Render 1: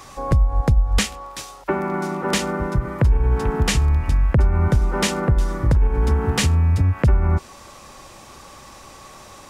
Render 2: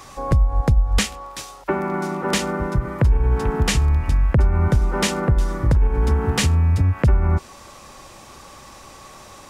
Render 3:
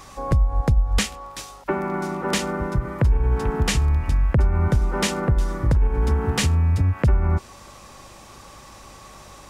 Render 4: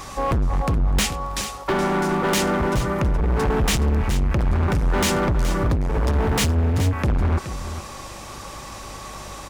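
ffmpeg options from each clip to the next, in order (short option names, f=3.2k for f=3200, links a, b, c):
-af anull
-af "aeval=exprs='val(0)+0.00355*(sin(2*PI*50*n/s)+sin(2*PI*2*50*n/s)/2+sin(2*PI*3*50*n/s)/3+sin(2*PI*4*50*n/s)/4+sin(2*PI*5*50*n/s)/5)':c=same,volume=-2dB"
-filter_complex "[0:a]volume=25.5dB,asoftclip=hard,volume=-25.5dB,asplit=2[a][b];[b]aecho=0:1:422:0.282[c];[a][c]amix=inputs=2:normalize=0,volume=7.5dB"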